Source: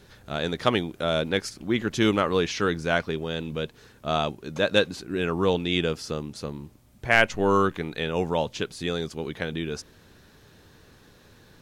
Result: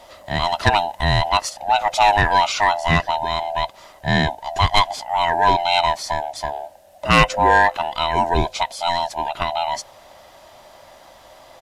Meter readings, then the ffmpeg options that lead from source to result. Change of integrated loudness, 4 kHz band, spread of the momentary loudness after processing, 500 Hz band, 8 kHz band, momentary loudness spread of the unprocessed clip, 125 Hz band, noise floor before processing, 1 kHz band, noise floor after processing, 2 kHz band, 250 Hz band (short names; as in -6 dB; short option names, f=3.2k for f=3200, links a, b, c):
+7.0 dB, +7.5 dB, 11 LU, +1.5 dB, +8.5 dB, 12 LU, +6.5 dB, -55 dBFS, +14.5 dB, -47 dBFS, +6.5 dB, -1.0 dB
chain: -af "afftfilt=real='real(if(lt(b,1008),b+24*(1-2*mod(floor(b/24),2)),b),0)':imag='imag(if(lt(b,1008),b+24*(1-2*mod(floor(b/24),2)),b),0)':win_size=2048:overlap=0.75,aresample=32000,aresample=44100,aeval=exprs='0.501*sin(PI/2*1.58*val(0)/0.501)':c=same"